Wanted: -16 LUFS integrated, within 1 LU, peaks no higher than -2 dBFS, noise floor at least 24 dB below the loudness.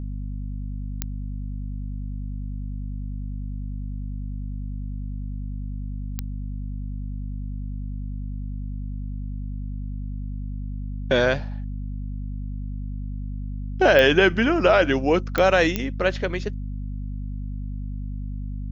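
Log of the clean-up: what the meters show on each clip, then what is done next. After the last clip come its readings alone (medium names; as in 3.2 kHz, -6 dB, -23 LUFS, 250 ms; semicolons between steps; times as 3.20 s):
clicks found 5; hum 50 Hz; highest harmonic 250 Hz; hum level -28 dBFS; loudness -26.5 LUFS; peak level -3.5 dBFS; loudness target -16.0 LUFS
-> de-click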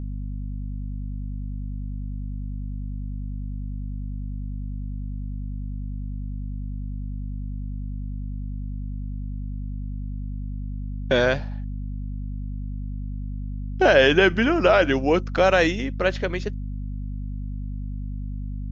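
clicks found 0; hum 50 Hz; highest harmonic 250 Hz; hum level -28 dBFS
-> de-hum 50 Hz, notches 5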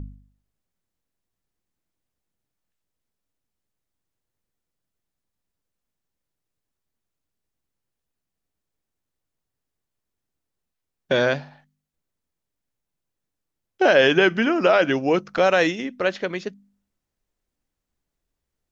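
hum not found; loudness -20.0 LUFS; peak level -4.5 dBFS; loudness target -16.0 LUFS
-> trim +4 dB; peak limiter -2 dBFS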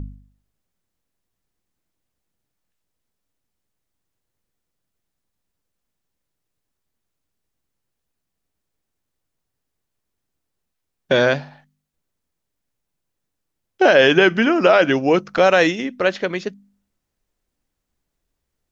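loudness -16.5 LUFS; peak level -2.0 dBFS; noise floor -79 dBFS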